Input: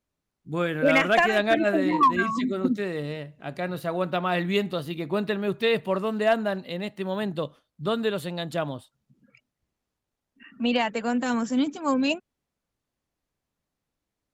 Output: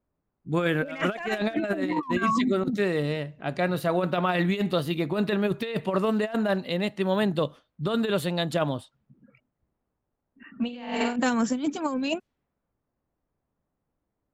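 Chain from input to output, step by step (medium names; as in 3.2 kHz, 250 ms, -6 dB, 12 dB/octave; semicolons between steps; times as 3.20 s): 10.64–11.16 s: flutter echo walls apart 7.8 m, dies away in 1.2 s; compressor with a negative ratio -26 dBFS, ratio -0.5; level-controlled noise filter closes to 1.2 kHz, open at -26.5 dBFS; trim +1.5 dB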